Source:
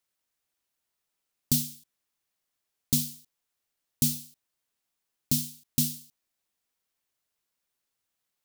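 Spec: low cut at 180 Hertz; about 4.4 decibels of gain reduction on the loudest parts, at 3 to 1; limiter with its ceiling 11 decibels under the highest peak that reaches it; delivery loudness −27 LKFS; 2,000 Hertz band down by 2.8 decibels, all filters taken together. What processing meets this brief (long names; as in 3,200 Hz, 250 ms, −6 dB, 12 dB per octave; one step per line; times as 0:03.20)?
high-pass filter 180 Hz
parametric band 2,000 Hz −4 dB
downward compressor 3 to 1, threshold −27 dBFS
level +9.5 dB
brickwall limiter −11.5 dBFS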